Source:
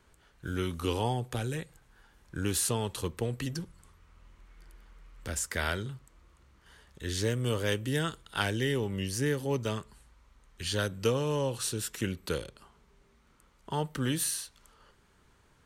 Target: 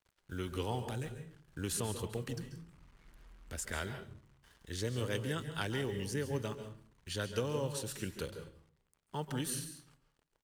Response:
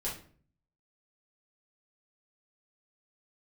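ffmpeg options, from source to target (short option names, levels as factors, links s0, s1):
-filter_complex "[0:a]atempo=1.5,acrusher=bits=8:mix=0:aa=0.5,asplit=2[s0][s1];[1:a]atrim=start_sample=2205,adelay=134[s2];[s1][s2]afir=irnorm=-1:irlink=0,volume=0.266[s3];[s0][s3]amix=inputs=2:normalize=0,volume=0.473"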